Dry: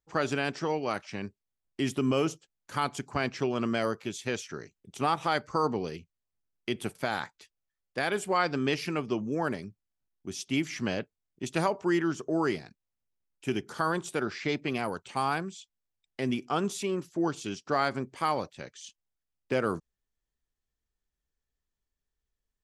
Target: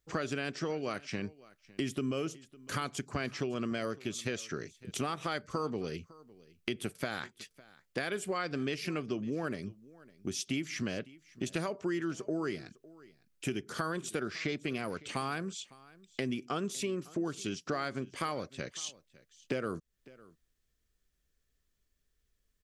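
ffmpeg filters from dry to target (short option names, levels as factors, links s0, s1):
-filter_complex "[0:a]equalizer=f=870:w=3:g=-10.5,acompressor=threshold=0.00794:ratio=4,asplit=2[s0][s1];[s1]aecho=0:1:556:0.0841[s2];[s0][s2]amix=inputs=2:normalize=0,volume=2.51"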